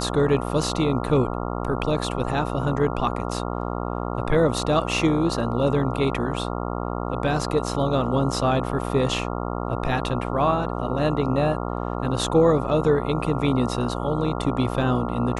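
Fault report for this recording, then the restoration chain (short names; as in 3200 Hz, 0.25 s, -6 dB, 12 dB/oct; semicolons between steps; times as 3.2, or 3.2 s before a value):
buzz 60 Hz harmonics 23 -28 dBFS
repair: de-hum 60 Hz, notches 23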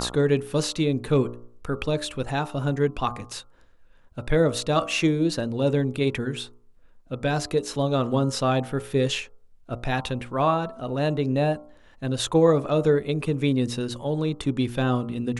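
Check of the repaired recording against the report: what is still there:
none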